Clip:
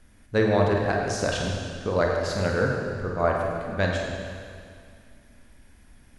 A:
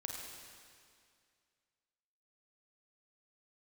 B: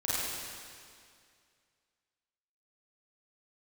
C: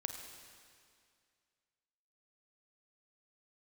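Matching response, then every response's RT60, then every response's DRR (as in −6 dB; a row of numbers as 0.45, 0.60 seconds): A; 2.2, 2.2, 2.2 seconds; −0.5, −10.5, 4.5 decibels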